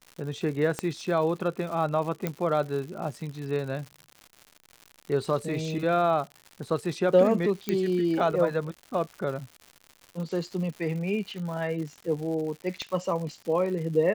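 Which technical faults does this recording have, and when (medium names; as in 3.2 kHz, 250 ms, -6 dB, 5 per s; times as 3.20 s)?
crackle 180 per s -36 dBFS
0.79 s: pop -14 dBFS
2.27 s: pop -14 dBFS
7.69 s: pop -13 dBFS
12.82 s: pop -21 dBFS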